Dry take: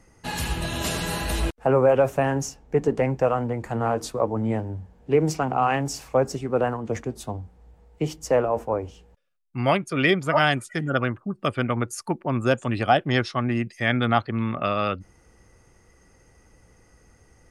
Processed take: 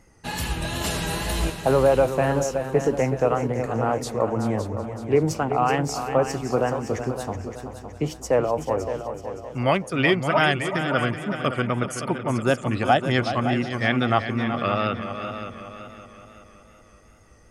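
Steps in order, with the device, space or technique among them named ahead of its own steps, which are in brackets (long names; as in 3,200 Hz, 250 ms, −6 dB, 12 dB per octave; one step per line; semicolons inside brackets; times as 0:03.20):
multi-head tape echo (echo machine with several playback heads 188 ms, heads second and third, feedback 46%, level −10 dB; tape wow and flutter 47 cents)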